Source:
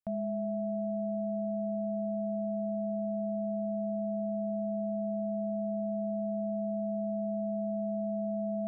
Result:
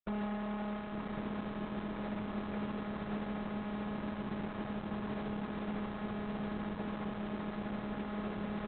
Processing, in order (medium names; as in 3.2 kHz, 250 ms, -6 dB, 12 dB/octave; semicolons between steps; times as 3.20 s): comb filter that takes the minimum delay 3.1 ms; high-pass 43 Hz 12 dB/octave; tilt EQ -2.5 dB/octave; band-stop 670 Hz, Q 12; comb 5.6 ms, depth 49%; Schmitt trigger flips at -54.5 dBFS; distance through air 310 m; feedback delay 146 ms, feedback 27%, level -6 dB; resampled via 32 kHz; Opus 8 kbps 48 kHz